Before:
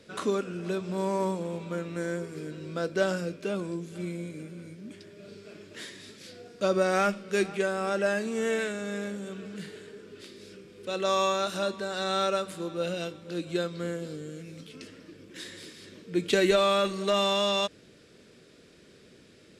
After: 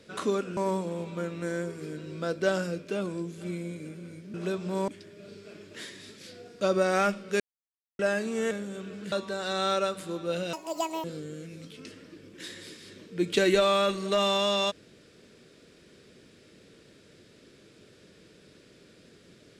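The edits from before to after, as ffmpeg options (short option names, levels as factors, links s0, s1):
-filter_complex "[0:a]asplit=10[s0][s1][s2][s3][s4][s5][s6][s7][s8][s9];[s0]atrim=end=0.572[s10];[s1]atrim=start=1.108:end=4.882[s11];[s2]atrim=start=0.568:end=1.112[s12];[s3]atrim=start=4.878:end=7.4,asetpts=PTS-STARTPTS,afade=t=out:st=2.518:d=0.004:c=hsin[s13];[s4]atrim=start=7.4:end=7.99,asetpts=PTS-STARTPTS,volume=0[s14];[s5]atrim=start=7.99:end=8.512,asetpts=PTS-STARTPTS,afade=t=in:d=0.004:c=hsin[s15];[s6]atrim=start=9.028:end=9.642[s16];[s7]atrim=start=11.628:end=13.044[s17];[s8]atrim=start=13.04:end=14,asetpts=PTS-STARTPTS,asetrate=82908,aresample=44100,atrim=end_sample=22519,asetpts=PTS-STARTPTS[s18];[s9]atrim=start=13.996[s19];[s10][s11]acrossfade=d=0.004:c1=hsin:c2=hsin[s20];[s20][s12]acrossfade=d=0.004:c1=hsin:c2=hsin[s21];[s13][s14][s15]concat=n=3:v=0:a=1[s22];[s21][s22]acrossfade=d=0.004:c1=hsin:c2=hsin[s23];[s23][s16]acrossfade=d=0.004:c1=hsin:c2=hsin[s24];[s24][s17]acrossfade=d=0.004:c1=hsin:c2=hsin[s25];[s25][s18]acrossfade=d=0.004:c1=hsin:c2=hsin[s26];[s26][s19]acrossfade=d=0.004:c1=hsin:c2=hsin"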